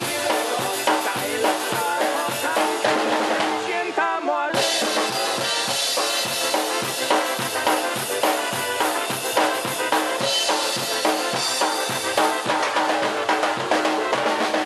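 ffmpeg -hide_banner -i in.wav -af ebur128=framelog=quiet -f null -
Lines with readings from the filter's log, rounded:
Integrated loudness:
  I:         -21.3 LUFS
  Threshold: -31.3 LUFS
Loudness range:
  LRA:         0.8 LU
  Threshold: -41.3 LUFS
  LRA low:   -21.7 LUFS
  LRA high:  -20.9 LUFS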